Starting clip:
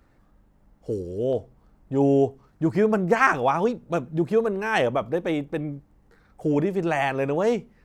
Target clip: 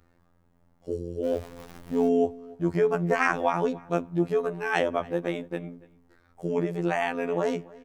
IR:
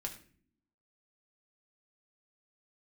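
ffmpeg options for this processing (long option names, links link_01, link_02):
-filter_complex "[0:a]asettb=1/sr,asplit=3[link_01][link_02][link_03];[link_01]atrim=end=1.244[link_04];[link_02]atrim=start=1.24:end=2.08,asetpts=PTS-STARTPTS,afade=type=in:duration=0.004:curve=qsin,afade=type=out:start_time=0.836:duration=0.004:curve=qsin,aeval=exprs='val(0)+0.5*0.0178*sgn(val(0))':channel_layout=same[link_05];[link_03]atrim=start=2.076[link_06];[link_04][link_05]acrossfade=duration=0.004:curve1=hsin:curve2=qsin[link_07];[link_07][link_06]acrossfade=duration=0.004:curve1=qsin:curve2=hsin,afftfilt=real='hypot(re,im)*cos(PI*b)':imag='0':win_size=2048:overlap=0.75,asplit=2[link_08][link_09];[link_09]adelay=286,lowpass=frequency=4000:poles=1,volume=-22dB,asplit=2[link_10][link_11];[link_11]adelay=286,lowpass=frequency=4000:poles=1,volume=0.25[link_12];[link_08][link_10][link_12]amix=inputs=3:normalize=0"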